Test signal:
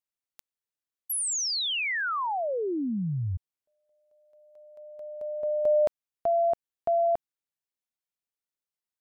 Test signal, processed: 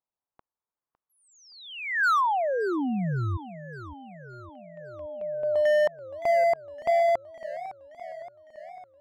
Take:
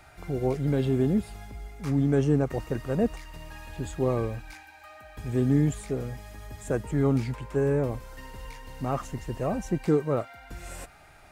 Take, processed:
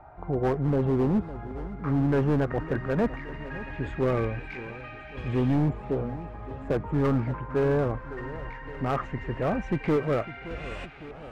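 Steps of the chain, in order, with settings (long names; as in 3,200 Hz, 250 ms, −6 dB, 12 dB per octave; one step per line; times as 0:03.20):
auto-filter low-pass saw up 0.18 Hz 890–3,000 Hz
gain into a clipping stage and back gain 21 dB
feedback echo with a swinging delay time 563 ms, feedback 64%, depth 216 cents, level −15.5 dB
level +1.5 dB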